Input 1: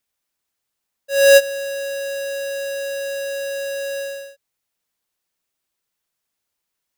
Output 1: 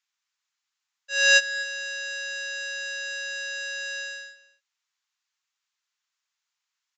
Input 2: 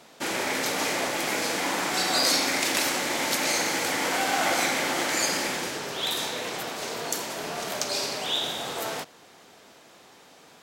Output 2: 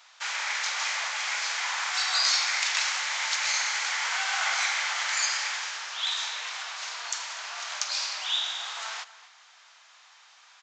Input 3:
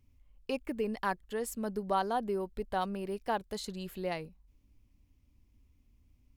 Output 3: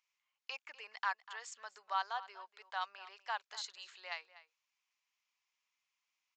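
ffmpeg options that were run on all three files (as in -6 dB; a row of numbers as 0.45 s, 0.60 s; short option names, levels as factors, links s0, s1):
-filter_complex "[0:a]aresample=16000,aresample=44100,highpass=f=1000:w=0.5412,highpass=f=1000:w=1.3066,asplit=2[s0][s1];[s1]adelay=244.9,volume=0.158,highshelf=f=4000:g=-5.51[s2];[s0][s2]amix=inputs=2:normalize=0"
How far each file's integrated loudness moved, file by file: -5.5 LU, -1.5 LU, -7.0 LU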